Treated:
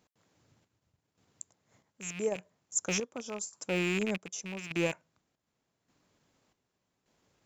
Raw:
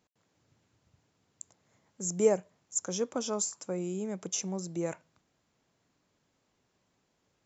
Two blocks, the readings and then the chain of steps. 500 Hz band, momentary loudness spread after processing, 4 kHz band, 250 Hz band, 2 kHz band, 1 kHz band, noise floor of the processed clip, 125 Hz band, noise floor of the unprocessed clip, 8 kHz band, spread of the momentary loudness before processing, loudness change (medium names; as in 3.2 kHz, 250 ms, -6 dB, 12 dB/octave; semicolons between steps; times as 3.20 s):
-4.0 dB, 17 LU, +2.5 dB, -0.5 dB, +12.5 dB, -2.5 dB, -83 dBFS, +0.5 dB, -77 dBFS, no reading, 22 LU, -1.5 dB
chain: rattle on loud lows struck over -41 dBFS, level -26 dBFS; transient shaper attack -3 dB, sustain -8 dB; square tremolo 0.85 Hz, depth 65%, duty 55%; trim +3.5 dB